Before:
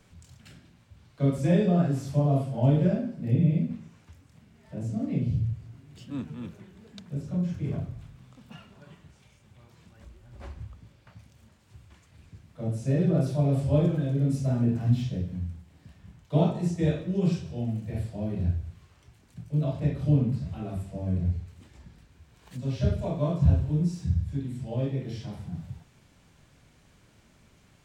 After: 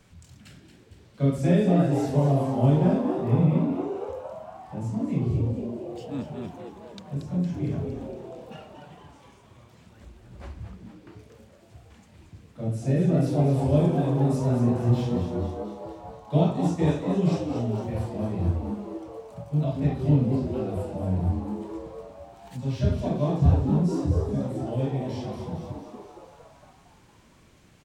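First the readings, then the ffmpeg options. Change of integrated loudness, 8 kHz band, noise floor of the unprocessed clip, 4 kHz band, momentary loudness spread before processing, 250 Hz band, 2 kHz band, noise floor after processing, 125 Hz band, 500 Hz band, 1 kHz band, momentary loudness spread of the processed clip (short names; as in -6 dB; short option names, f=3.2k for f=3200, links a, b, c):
+2.0 dB, n/a, -60 dBFS, +2.5 dB, 16 LU, +3.0 dB, +2.5 dB, -55 dBFS, +1.5 dB, +4.5 dB, +7.0 dB, 19 LU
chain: -filter_complex "[0:a]asplit=9[a][b][c][d][e][f][g][h][i];[b]adelay=230,afreqshift=120,volume=-8.5dB[j];[c]adelay=460,afreqshift=240,volume=-12.8dB[k];[d]adelay=690,afreqshift=360,volume=-17.1dB[l];[e]adelay=920,afreqshift=480,volume=-21.4dB[m];[f]adelay=1150,afreqshift=600,volume=-25.7dB[n];[g]adelay=1380,afreqshift=720,volume=-30dB[o];[h]adelay=1610,afreqshift=840,volume=-34.3dB[p];[i]adelay=1840,afreqshift=960,volume=-38.6dB[q];[a][j][k][l][m][n][o][p][q]amix=inputs=9:normalize=0,volume=1.5dB"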